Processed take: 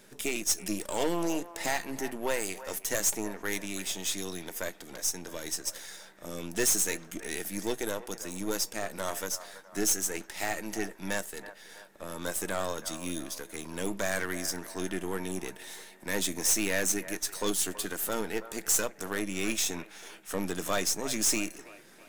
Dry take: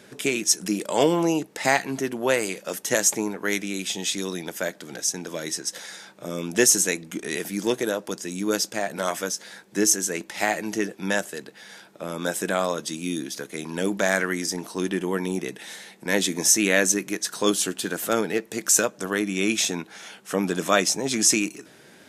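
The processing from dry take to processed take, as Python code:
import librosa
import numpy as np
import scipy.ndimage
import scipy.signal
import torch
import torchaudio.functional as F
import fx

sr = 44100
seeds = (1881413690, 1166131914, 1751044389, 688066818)

y = np.where(x < 0.0, 10.0 ** (-7.0 / 20.0) * x, x)
y = fx.high_shelf(y, sr, hz=8500.0, db=10.5)
y = fx.comb_fb(y, sr, f0_hz=910.0, decay_s=0.16, harmonics='all', damping=0.0, mix_pct=50)
y = np.clip(y, -10.0 ** (-20.5 / 20.0), 10.0 ** (-20.5 / 20.0))
y = fx.echo_wet_bandpass(y, sr, ms=327, feedback_pct=49, hz=1000.0, wet_db=-12)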